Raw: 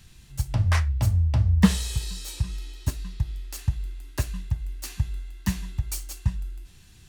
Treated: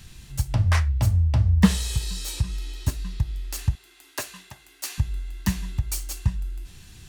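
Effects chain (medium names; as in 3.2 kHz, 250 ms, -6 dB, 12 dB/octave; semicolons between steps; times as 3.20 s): 3.75–4.98 s: high-pass 460 Hz 12 dB/octave; in parallel at 0 dB: compression, threshold -35 dBFS, peak gain reduction 22.5 dB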